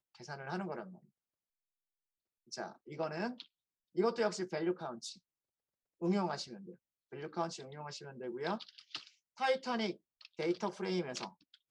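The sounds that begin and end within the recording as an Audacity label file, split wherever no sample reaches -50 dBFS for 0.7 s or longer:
2.520000	5.150000	sound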